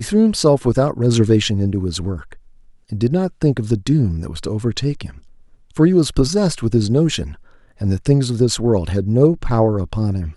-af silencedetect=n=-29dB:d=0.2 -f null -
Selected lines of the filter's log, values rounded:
silence_start: 2.33
silence_end: 2.92 | silence_duration: 0.59
silence_start: 5.10
silence_end: 5.77 | silence_duration: 0.66
silence_start: 7.33
silence_end: 7.81 | silence_duration: 0.48